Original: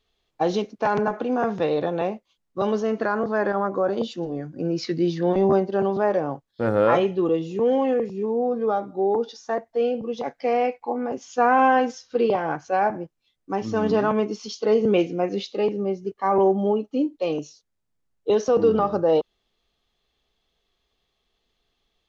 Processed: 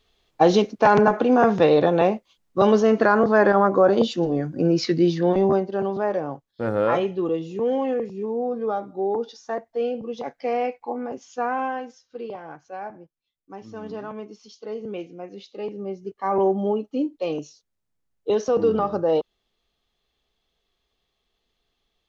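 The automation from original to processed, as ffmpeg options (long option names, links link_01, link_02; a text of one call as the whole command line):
ffmpeg -i in.wav -af "volume=18dB,afade=type=out:start_time=4.55:duration=1.1:silence=0.354813,afade=type=out:start_time=10.95:duration=0.9:silence=0.298538,afade=type=in:start_time=15.37:duration=1.08:silence=0.266073" out.wav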